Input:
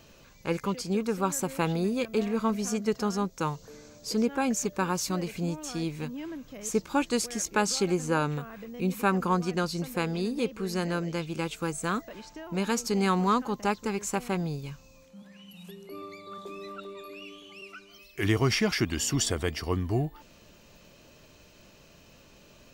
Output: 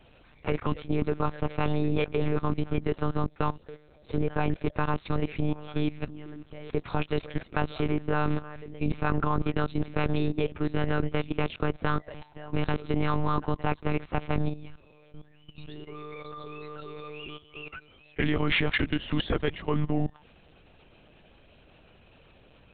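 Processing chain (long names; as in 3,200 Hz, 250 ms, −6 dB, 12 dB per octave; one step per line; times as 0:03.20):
one-pitch LPC vocoder at 8 kHz 150 Hz
output level in coarse steps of 16 dB
level +7.5 dB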